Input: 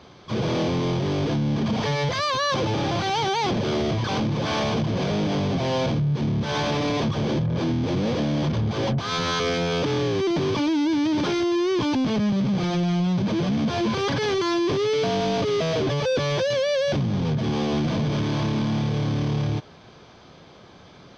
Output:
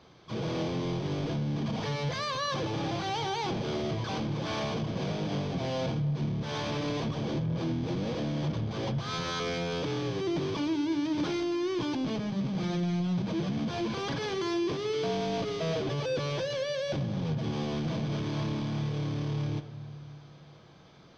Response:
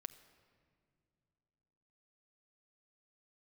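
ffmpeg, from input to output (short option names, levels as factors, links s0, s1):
-filter_complex "[0:a]bandreject=f=101.8:t=h:w=4,bandreject=f=203.6:t=h:w=4,bandreject=f=305.4:t=h:w=4,bandreject=f=407.2:t=h:w=4,bandreject=f=509:t=h:w=4,bandreject=f=610.8:t=h:w=4,bandreject=f=712.6:t=h:w=4,bandreject=f=814.4:t=h:w=4,bandreject=f=916.2:t=h:w=4,bandreject=f=1018:t=h:w=4,bandreject=f=1119.8:t=h:w=4,bandreject=f=1221.6:t=h:w=4,bandreject=f=1323.4:t=h:w=4,bandreject=f=1425.2:t=h:w=4,bandreject=f=1527:t=h:w=4,bandreject=f=1628.8:t=h:w=4,bandreject=f=1730.6:t=h:w=4,bandreject=f=1832.4:t=h:w=4,bandreject=f=1934.2:t=h:w=4,bandreject=f=2036:t=h:w=4,bandreject=f=2137.8:t=h:w=4,bandreject=f=2239.6:t=h:w=4,bandreject=f=2341.4:t=h:w=4,bandreject=f=2443.2:t=h:w=4,bandreject=f=2545:t=h:w=4,bandreject=f=2646.8:t=h:w=4,bandreject=f=2748.6:t=h:w=4,bandreject=f=2850.4:t=h:w=4,bandreject=f=2952.2:t=h:w=4,bandreject=f=3054:t=h:w=4,bandreject=f=3155.8:t=h:w=4,bandreject=f=3257.6:t=h:w=4,bandreject=f=3359.4:t=h:w=4,bandreject=f=3461.2:t=h:w=4[s0];[1:a]atrim=start_sample=2205[s1];[s0][s1]afir=irnorm=-1:irlink=0,volume=0.668"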